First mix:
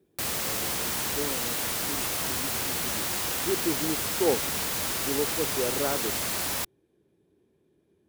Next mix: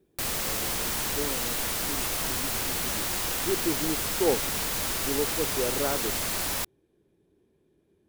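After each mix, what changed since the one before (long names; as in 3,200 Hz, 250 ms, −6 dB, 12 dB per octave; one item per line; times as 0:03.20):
master: remove high-pass filter 68 Hz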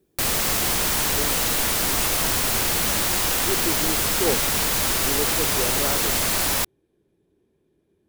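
background +7.5 dB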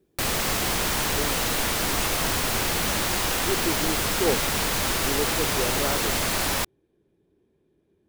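master: add high-shelf EQ 6,000 Hz −7 dB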